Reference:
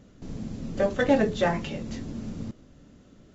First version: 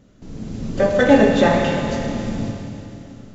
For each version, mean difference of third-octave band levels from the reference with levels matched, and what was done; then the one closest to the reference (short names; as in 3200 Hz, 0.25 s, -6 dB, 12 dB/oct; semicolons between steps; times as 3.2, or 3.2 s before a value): 5.0 dB: AGC gain up to 8 dB; Schroeder reverb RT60 2.8 s, combs from 25 ms, DRR 1 dB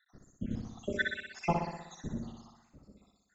7.5 dB: random spectral dropouts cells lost 84%; on a send: flutter echo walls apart 10.5 m, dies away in 0.87 s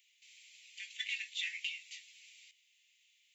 21.0 dB: steep high-pass 2200 Hz 72 dB/oct; bell 5400 Hz -15 dB 1.5 oct; gain +9 dB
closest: first